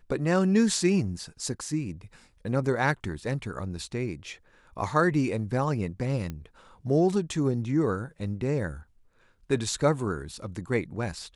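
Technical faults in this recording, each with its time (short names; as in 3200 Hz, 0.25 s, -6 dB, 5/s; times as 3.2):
6.3 pop -22 dBFS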